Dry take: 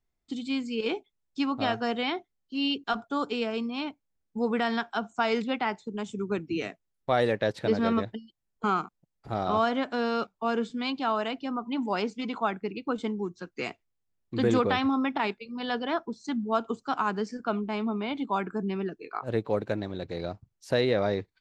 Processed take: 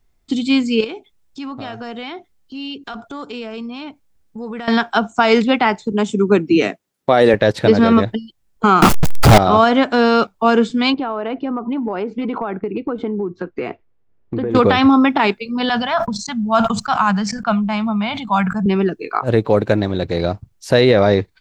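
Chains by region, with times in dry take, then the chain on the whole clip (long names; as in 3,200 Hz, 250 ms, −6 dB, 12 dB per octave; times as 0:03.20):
0:00.84–0:04.68: transient designer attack −6 dB, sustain +1 dB + downward compressor 3 to 1, threshold −45 dBFS
0:05.92–0:07.34: high-pass filter 240 Hz + low-shelf EQ 320 Hz +8 dB
0:08.82–0:09.38: converter with a step at zero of −41 dBFS + leveller curve on the samples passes 5
0:10.94–0:14.55: low-pass filter 2,000 Hz + parametric band 420 Hz +6.5 dB 1.1 octaves + downward compressor 10 to 1, threshold −33 dBFS
0:15.69–0:18.66: noise gate −46 dBFS, range −25 dB + drawn EQ curve 200 Hz 0 dB, 350 Hz −28 dB, 680 Hz −3 dB + level that may fall only so fast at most 45 dB per second
whole clip: low-shelf EQ 69 Hz +6.5 dB; boost into a limiter +15.5 dB; level −1 dB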